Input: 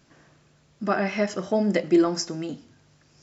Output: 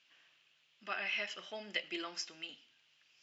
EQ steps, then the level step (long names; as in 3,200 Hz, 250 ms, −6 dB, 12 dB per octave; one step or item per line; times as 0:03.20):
resonant band-pass 2,900 Hz, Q 4.2
+4.5 dB